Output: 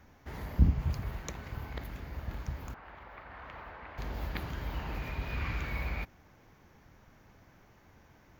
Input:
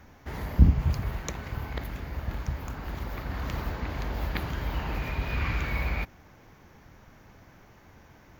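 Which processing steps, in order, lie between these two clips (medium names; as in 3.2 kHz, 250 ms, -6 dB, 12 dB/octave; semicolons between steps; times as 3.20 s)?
2.74–3.98 s: three-band isolator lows -15 dB, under 530 Hz, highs -24 dB, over 2.9 kHz; trim -6 dB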